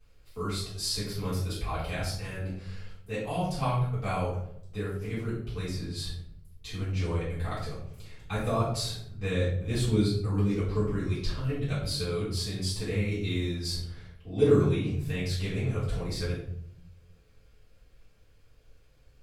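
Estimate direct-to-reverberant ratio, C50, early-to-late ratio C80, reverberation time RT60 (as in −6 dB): −13.0 dB, 3.0 dB, 6.5 dB, 0.70 s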